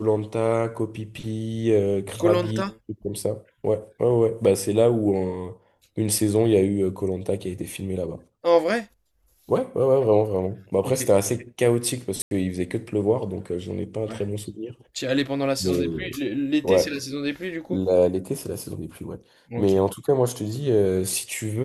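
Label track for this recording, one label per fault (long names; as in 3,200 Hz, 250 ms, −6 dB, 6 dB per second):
12.220000	12.310000	drop-out 91 ms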